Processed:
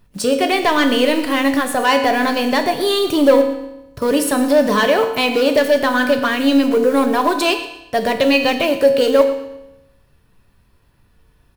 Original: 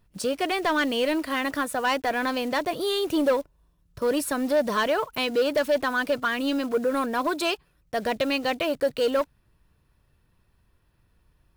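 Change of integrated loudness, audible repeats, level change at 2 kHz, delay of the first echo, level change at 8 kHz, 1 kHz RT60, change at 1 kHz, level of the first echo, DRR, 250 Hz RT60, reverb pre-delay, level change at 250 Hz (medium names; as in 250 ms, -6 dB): +10.0 dB, 2, +8.5 dB, 118 ms, +9.5 dB, 0.90 s, +9.0 dB, -16.0 dB, 5.0 dB, 0.95 s, 4 ms, +11.0 dB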